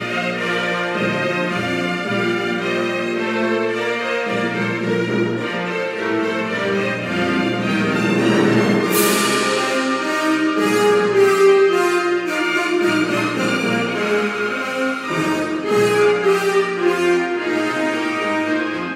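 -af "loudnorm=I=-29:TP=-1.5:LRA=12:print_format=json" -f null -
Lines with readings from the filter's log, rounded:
"input_i" : "-18.1",
"input_tp" : "-3.9",
"input_lra" : "4.0",
"input_thresh" : "-28.1",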